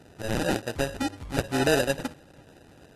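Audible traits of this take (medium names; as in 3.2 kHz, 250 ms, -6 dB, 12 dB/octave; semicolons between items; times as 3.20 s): aliases and images of a low sample rate 1.1 kHz, jitter 0%; AAC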